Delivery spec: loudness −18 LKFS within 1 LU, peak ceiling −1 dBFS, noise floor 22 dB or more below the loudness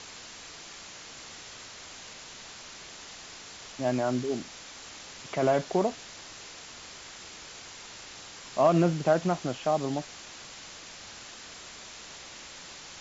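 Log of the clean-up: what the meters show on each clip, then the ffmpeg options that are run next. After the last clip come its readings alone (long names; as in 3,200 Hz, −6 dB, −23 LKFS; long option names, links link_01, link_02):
background noise floor −46 dBFS; target noise floor −53 dBFS; integrated loudness −30.5 LKFS; sample peak −11.5 dBFS; target loudness −18.0 LKFS
→ -af "afftdn=noise_reduction=7:noise_floor=-46"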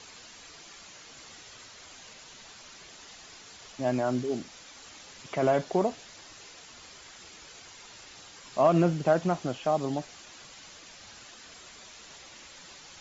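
background noise floor −50 dBFS; integrated loudness −28.0 LKFS; sample peak −11.5 dBFS; target loudness −18.0 LKFS
→ -af "volume=10dB"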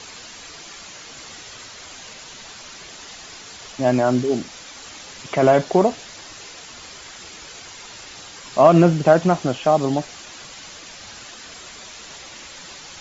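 integrated loudness −18.0 LKFS; sample peak −1.5 dBFS; background noise floor −40 dBFS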